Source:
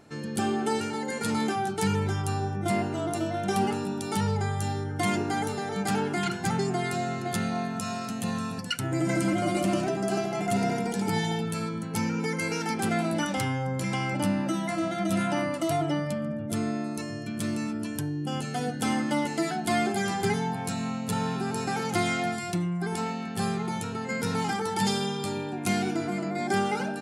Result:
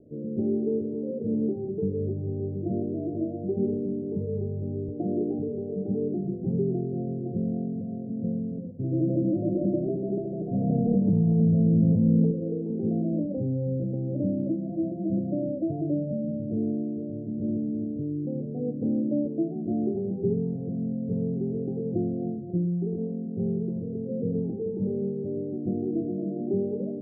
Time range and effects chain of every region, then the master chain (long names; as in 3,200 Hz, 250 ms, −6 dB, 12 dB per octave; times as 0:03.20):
0:04.88–0:05.39: high-pass filter 140 Hz + parametric band 930 Hz +5.5 dB 1.7 octaves
0:10.54–0:12.31: comb filter 1.3 ms, depth 74% + envelope flattener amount 100%
whole clip: Butterworth low-pass 590 Hz 72 dB per octave; mains-hum notches 50/100/150/200 Hz; level +2.5 dB